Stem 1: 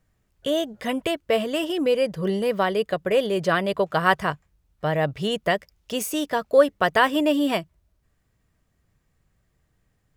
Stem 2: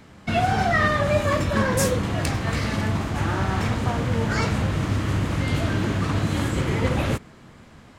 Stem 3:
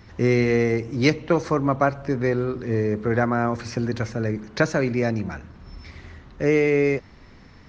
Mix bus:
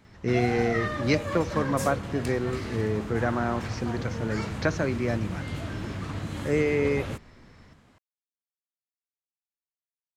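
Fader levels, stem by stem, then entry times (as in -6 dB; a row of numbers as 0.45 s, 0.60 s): mute, -10.5 dB, -5.5 dB; mute, 0.00 s, 0.05 s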